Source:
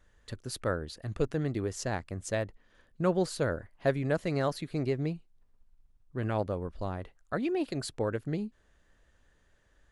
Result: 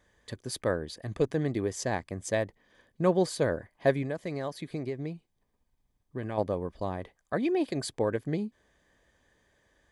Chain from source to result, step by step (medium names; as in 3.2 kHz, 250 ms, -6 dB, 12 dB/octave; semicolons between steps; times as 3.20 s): 4.02–6.38 s: compression 4:1, threshold -34 dBFS, peak gain reduction 9.5 dB; comb of notches 1.4 kHz; trim +3.5 dB